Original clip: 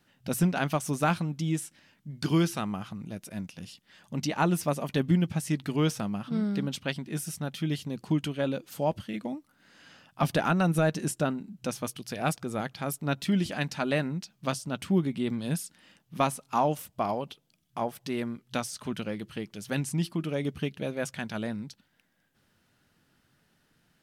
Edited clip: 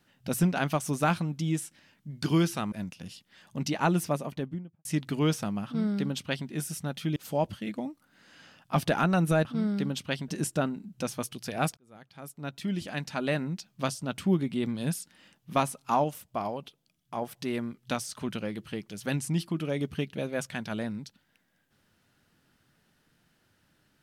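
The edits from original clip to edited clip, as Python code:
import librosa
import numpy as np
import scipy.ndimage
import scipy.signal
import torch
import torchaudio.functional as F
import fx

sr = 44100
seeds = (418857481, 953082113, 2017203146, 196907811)

y = fx.studio_fade_out(x, sr, start_s=4.52, length_s=0.9)
y = fx.edit(y, sr, fx.cut(start_s=2.72, length_s=0.57),
    fx.duplicate(start_s=6.22, length_s=0.83, to_s=10.92),
    fx.cut(start_s=7.73, length_s=0.9),
    fx.fade_in_span(start_s=12.41, length_s=1.78),
    fx.clip_gain(start_s=16.68, length_s=1.18, db=-3.0), tone=tone)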